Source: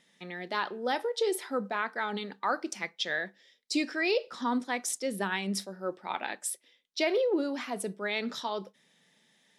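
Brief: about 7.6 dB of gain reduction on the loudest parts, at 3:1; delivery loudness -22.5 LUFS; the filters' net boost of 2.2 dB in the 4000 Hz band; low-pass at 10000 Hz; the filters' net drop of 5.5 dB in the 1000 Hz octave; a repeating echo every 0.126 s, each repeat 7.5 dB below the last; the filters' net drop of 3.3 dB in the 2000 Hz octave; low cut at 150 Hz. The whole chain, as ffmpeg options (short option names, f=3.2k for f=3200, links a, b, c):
-af "highpass=150,lowpass=10k,equalizer=f=1k:t=o:g=-6.5,equalizer=f=2k:t=o:g=-3,equalizer=f=4k:t=o:g=4,acompressor=threshold=-35dB:ratio=3,aecho=1:1:126|252|378|504|630:0.422|0.177|0.0744|0.0312|0.0131,volume=15.5dB"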